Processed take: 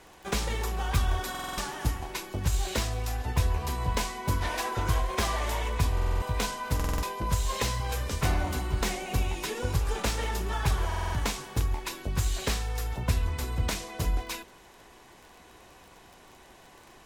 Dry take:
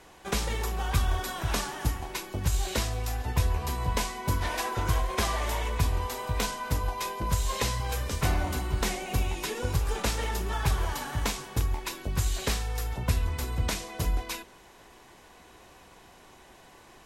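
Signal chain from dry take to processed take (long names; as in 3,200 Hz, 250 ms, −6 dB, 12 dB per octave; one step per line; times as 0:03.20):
phase distortion by the signal itself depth 0.05 ms
surface crackle 32 per second −41 dBFS
buffer that repeats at 0:01.30/0:05.94/0:06.75/0:10.87, samples 2,048, times 5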